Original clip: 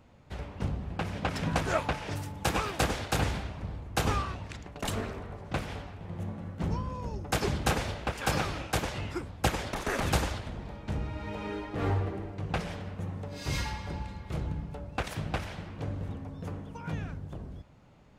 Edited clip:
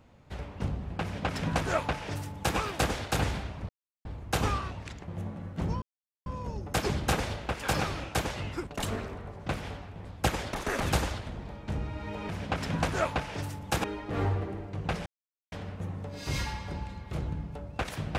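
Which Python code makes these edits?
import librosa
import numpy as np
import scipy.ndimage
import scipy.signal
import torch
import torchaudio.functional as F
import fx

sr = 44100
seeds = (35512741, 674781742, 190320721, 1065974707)

y = fx.edit(x, sr, fx.duplicate(start_s=1.02, length_s=1.55, to_s=11.49),
    fx.insert_silence(at_s=3.69, length_s=0.36),
    fx.move(start_s=4.72, length_s=1.38, to_s=9.25),
    fx.insert_silence(at_s=6.84, length_s=0.44),
    fx.insert_silence(at_s=12.71, length_s=0.46), tone=tone)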